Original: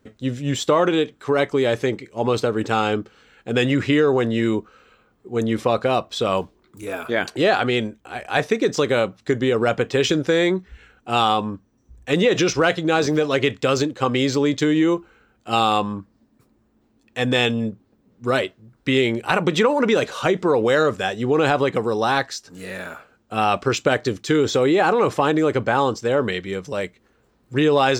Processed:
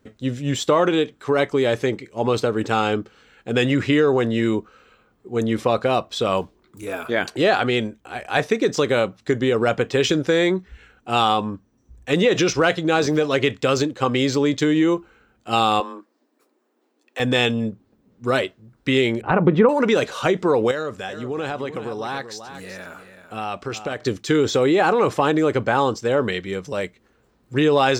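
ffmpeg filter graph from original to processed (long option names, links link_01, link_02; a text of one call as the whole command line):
ffmpeg -i in.wav -filter_complex "[0:a]asettb=1/sr,asplit=3[link_01][link_02][link_03];[link_01]atrim=end=15.804[link_04];[link_02]atrim=start=15.8:end=17.2,asetpts=PTS-STARTPTS,afade=type=in:duration=0.004:curve=qsin,afade=type=out:start_time=1.396:duration=0.004:curve=qsin,deesser=0.85,highpass=frequency=310:width=0.5412,highpass=frequency=310:width=1.3066,afreqshift=18[link_05];[link_03]atrim=start=17.196[link_06];[link_04][link_05]acrossfade=duration=0.004:curve1=hsin:curve2=qsin[link_07];[link_07][link_06]acrossfade=duration=0.004:curve1=qsin:curve2=hsin,asettb=1/sr,asplit=3[link_08][link_09][link_10];[link_08]atrim=end=19.214[link_11];[link_09]atrim=start=19.21:end=19.69,asetpts=PTS-STARTPTS,afade=type=in:duration=0.004:curve=qsin,afade=type=out:start_time=0.476:duration=0.004:curve=qsin,lowpass=1500,lowshelf=frequency=360:gain=7.5[link_12];[link_10]atrim=start=19.686[link_13];[link_11][link_12]acrossfade=duration=0.004:curve1=hsin:curve2=qsin[link_14];[link_14][link_13]acrossfade=duration=0.004:curve1=qsin:curve2=hsin,asettb=1/sr,asplit=3[link_15][link_16][link_17];[link_15]atrim=end=20.714[link_18];[link_16]atrim=start=20.71:end=24.01,asetpts=PTS-STARTPTS,afade=type=in:duration=0.004:curve=qsin,afade=type=out:start_time=3.296:duration=0.004:curve=qsin,acompressor=threshold=-39dB:ratio=1.5:attack=3.2:release=140:knee=1:detection=peak,aecho=1:1:380:0.299,atrim=end_sample=145530[link_19];[link_17]atrim=start=24.006[link_20];[link_18][link_19]acrossfade=duration=0.004:curve1=hsin:curve2=qsin[link_21];[link_21][link_20]acrossfade=duration=0.004:curve1=qsin:curve2=hsin" out.wav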